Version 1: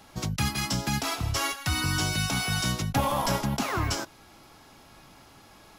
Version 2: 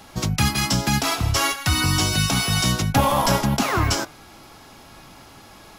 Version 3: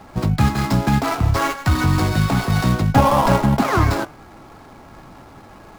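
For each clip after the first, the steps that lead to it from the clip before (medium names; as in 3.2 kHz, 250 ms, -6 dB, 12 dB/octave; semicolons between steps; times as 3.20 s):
de-hum 148.5 Hz, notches 17; trim +7.5 dB
median filter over 15 samples; trim +5 dB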